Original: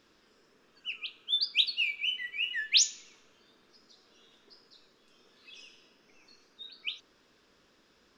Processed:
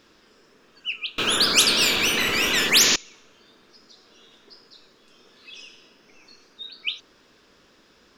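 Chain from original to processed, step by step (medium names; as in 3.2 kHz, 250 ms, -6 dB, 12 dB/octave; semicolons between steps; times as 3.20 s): 1.18–2.96 s: spectrum-flattening compressor 10:1; trim +8.5 dB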